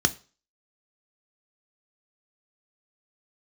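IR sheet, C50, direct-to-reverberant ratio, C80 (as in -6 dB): 20.0 dB, 9.0 dB, 25.0 dB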